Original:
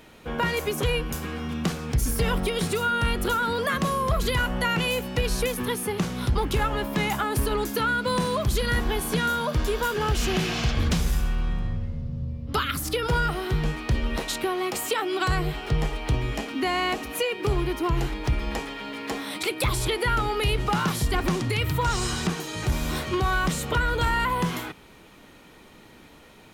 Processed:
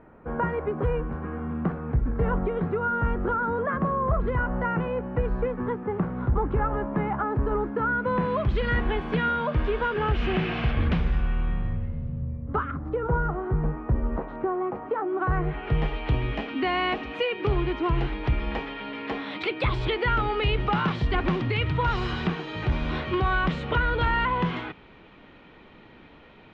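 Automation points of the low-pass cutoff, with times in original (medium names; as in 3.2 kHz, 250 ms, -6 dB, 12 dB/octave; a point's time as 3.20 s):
low-pass 24 dB/octave
7.81 s 1.5 kHz
8.45 s 2.7 kHz
12.10 s 2.7 kHz
12.70 s 1.3 kHz
15.17 s 1.3 kHz
15.85 s 3.3 kHz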